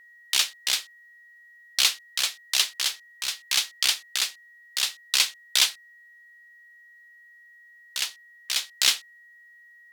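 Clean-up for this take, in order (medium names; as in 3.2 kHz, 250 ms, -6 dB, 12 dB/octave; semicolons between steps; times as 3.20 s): band-stop 1.9 kHz, Q 30; interpolate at 2.96/4.18/8.10/8.49 s, 2 ms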